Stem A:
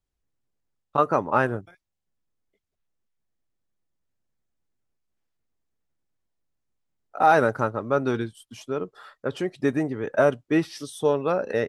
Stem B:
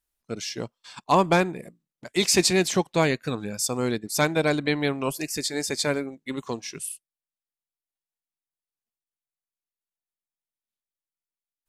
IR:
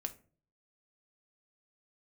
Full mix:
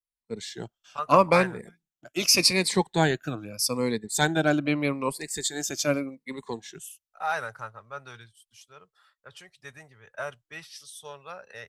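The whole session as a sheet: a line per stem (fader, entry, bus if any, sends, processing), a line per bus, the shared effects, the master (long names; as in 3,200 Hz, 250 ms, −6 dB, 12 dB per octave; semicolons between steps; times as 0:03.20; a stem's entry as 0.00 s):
0.0 dB, 0.00 s, no send, guitar amp tone stack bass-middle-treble 10-0-10
−4.0 dB, 0.00 s, no send, rippled gain that drifts along the octave scale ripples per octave 0.93, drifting −0.82 Hz, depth 13 dB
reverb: not used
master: multiband upward and downward expander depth 40%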